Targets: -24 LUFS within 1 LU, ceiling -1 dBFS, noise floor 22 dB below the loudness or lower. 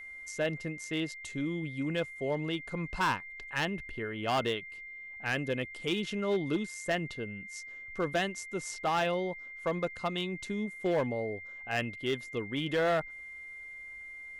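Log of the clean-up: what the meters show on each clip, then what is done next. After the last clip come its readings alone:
clipped 1.1%; flat tops at -23.5 dBFS; steady tone 2100 Hz; tone level -43 dBFS; loudness -34.0 LUFS; peak -23.5 dBFS; loudness target -24.0 LUFS
-> clip repair -23.5 dBFS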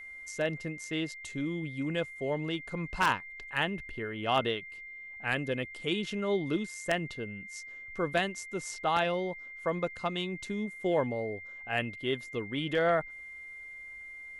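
clipped 0.0%; steady tone 2100 Hz; tone level -43 dBFS
-> notch 2100 Hz, Q 30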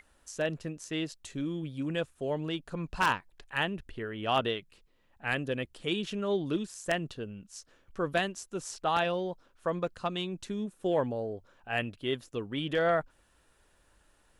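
steady tone none; loudness -33.0 LUFS; peak -14.0 dBFS; loudness target -24.0 LUFS
-> gain +9 dB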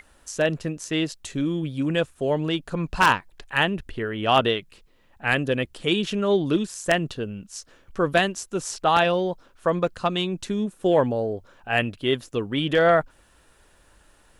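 loudness -24.0 LUFS; peak -5.0 dBFS; noise floor -58 dBFS

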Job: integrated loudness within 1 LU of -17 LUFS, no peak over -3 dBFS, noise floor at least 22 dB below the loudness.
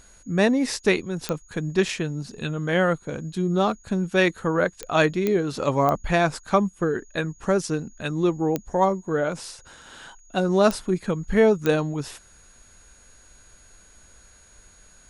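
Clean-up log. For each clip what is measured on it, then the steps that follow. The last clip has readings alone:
clicks 7; steady tone 6700 Hz; tone level -54 dBFS; loudness -24.0 LUFS; peak -5.5 dBFS; loudness target -17.0 LUFS
-> de-click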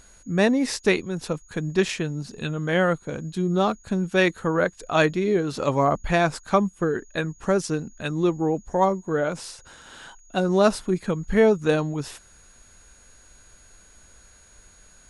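clicks 0; steady tone 6700 Hz; tone level -54 dBFS
-> notch 6700 Hz, Q 30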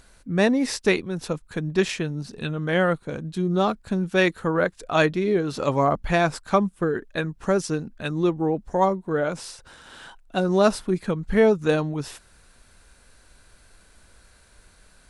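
steady tone none; loudness -24.0 LUFS; peak -5.5 dBFS; loudness target -17.0 LUFS
-> gain +7 dB; limiter -3 dBFS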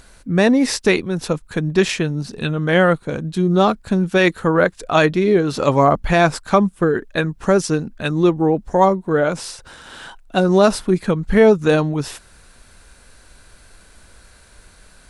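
loudness -17.5 LUFS; peak -3.0 dBFS; noise floor -49 dBFS

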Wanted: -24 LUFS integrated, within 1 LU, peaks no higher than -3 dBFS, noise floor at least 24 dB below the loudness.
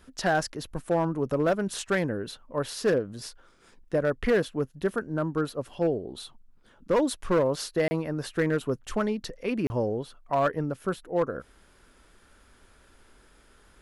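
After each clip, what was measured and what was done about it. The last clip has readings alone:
clipped 0.8%; flat tops at -17.5 dBFS; dropouts 2; longest dropout 30 ms; loudness -28.5 LUFS; peak -17.5 dBFS; loudness target -24.0 LUFS
-> clip repair -17.5 dBFS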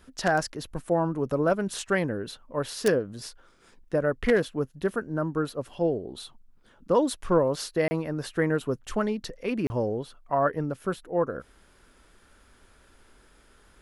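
clipped 0.0%; dropouts 2; longest dropout 30 ms
-> interpolate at 7.88/9.67, 30 ms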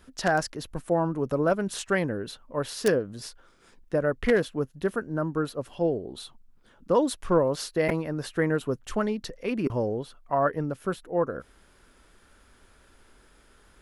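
dropouts 0; loudness -28.0 LUFS; peak -8.5 dBFS; loudness target -24.0 LUFS
-> gain +4 dB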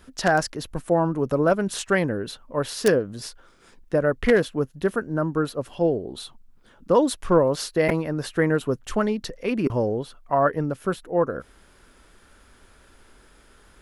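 loudness -24.0 LUFS; peak -4.5 dBFS; noise floor -55 dBFS

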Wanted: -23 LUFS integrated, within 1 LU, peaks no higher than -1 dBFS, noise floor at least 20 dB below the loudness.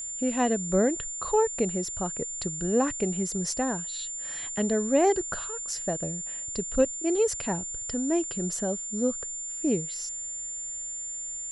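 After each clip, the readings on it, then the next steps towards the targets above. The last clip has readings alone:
ticks 40/s; steady tone 7200 Hz; tone level -33 dBFS; loudness -28.0 LUFS; peak -10.5 dBFS; loudness target -23.0 LUFS
-> de-click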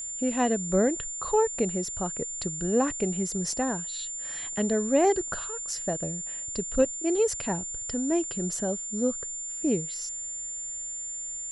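ticks 0.087/s; steady tone 7200 Hz; tone level -33 dBFS
-> notch 7200 Hz, Q 30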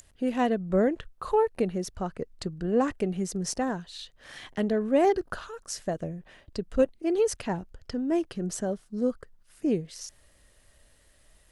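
steady tone none; loudness -29.0 LUFS; peak -11.0 dBFS; loudness target -23.0 LUFS
-> gain +6 dB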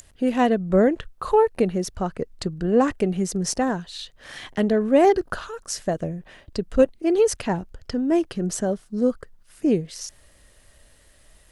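loudness -23.0 LUFS; peak -5.0 dBFS; noise floor -55 dBFS

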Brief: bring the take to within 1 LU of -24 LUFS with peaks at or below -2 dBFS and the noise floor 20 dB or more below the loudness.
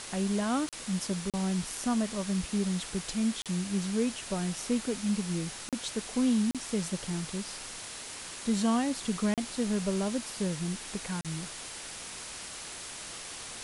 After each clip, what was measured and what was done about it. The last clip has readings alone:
dropouts 7; longest dropout 37 ms; noise floor -43 dBFS; noise floor target -53 dBFS; loudness -32.5 LUFS; peak -16.0 dBFS; loudness target -24.0 LUFS
-> interpolate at 0.69/1.3/3.42/5.69/6.51/9.34/11.21, 37 ms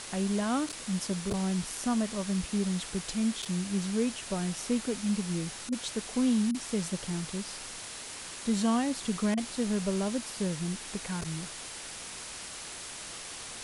dropouts 0; noise floor -43 dBFS; noise floor target -52 dBFS
-> noise print and reduce 9 dB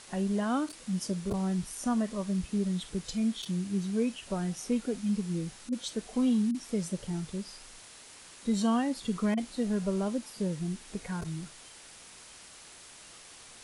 noise floor -51 dBFS; noise floor target -52 dBFS
-> noise print and reduce 6 dB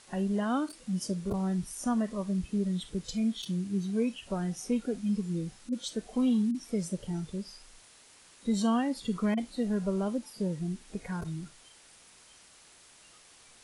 noise floor -57 dBFS; loudness -32.0 LUFS; peak -17.0 dBFS; loudness target -24.0 LUFS
-> gain +8 dB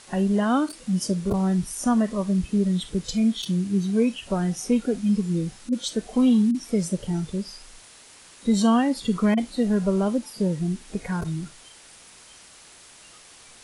loudness -24.0 LUFS; peak -9.0 dBFS; noise floor -49 dBFS

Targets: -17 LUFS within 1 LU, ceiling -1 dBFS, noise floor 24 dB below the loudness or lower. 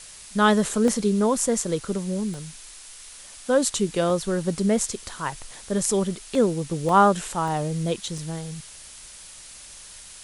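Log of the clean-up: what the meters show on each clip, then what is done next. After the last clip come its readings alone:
dropouts 8; longest dropout 1.3 ms; noise floor -44 dBFS; noise floor target -48 dBFS; loudness -23.5 LUFS; peak -5.0 dBFS; loudness target -17.0 LUFS
-> interpolate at 0.88/2.34/4.1/5.08/6.35/6.89/7.48/8.18, 1.3 ms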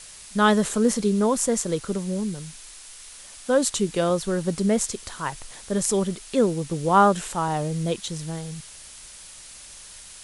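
dropouts 0; noise floor -44 dBFS; noise floor target -48 dBFS
-> denoiser 6 dB, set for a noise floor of -44 dBFS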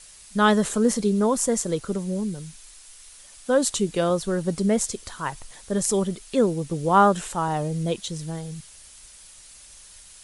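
noise floor -48 dBFS; loudness -24.0 LUFS; peak -5.0 dBFS; loudness target -17.0 LUFS
-> gain +7 dB; limiter -1 dBFS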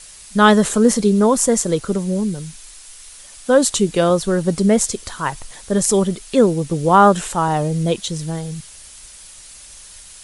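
loudness -17.0 LUFS; peak -1.0 dBFS; noise floor -41 dBFS

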